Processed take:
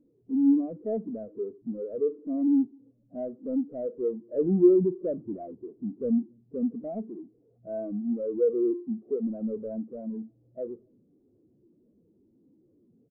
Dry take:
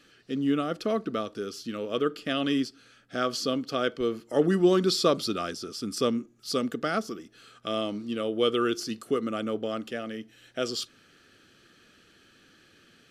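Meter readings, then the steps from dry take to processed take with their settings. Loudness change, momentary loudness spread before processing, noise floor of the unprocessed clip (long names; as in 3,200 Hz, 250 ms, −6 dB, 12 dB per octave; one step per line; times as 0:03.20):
0.0 dB, 12 LU, −60 dBFS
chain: Butterworth low-pass 810 Hz 48 dB per octave
power curve on the samples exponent 0.35
slap from a distant wall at 47 metres, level −19 dB
every bin expanded away from the loudest bin 2.5 to 1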